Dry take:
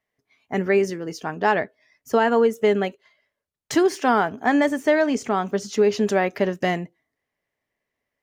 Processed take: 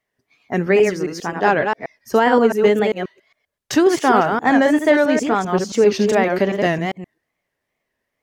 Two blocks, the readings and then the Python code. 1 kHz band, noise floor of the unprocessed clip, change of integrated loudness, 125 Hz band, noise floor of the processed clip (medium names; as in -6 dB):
+5.0 dB, -83 dBFS, +4.5 dB, +5.5 dB, -78 dBFS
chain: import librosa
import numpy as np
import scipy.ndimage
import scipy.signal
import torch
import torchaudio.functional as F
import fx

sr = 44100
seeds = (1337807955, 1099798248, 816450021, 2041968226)

y = fx.reverse_delay(x, sr, ms=133, wet_db=-4.5)
y = fx.wow_flutter(y, sr, seeds[0], rate_hz=2.1, depth_cents=120.0)
y = y * 10.0 ** (3.5 / 20.0)